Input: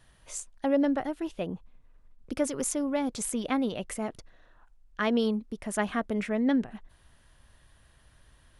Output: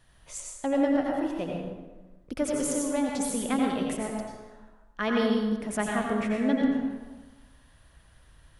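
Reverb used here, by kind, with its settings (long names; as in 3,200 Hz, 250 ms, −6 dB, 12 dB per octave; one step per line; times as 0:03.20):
dense smooth reverb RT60 1.2 s, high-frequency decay 0.65×, pre-delay 75 ms, DRR −1 dB
level −1.5 dB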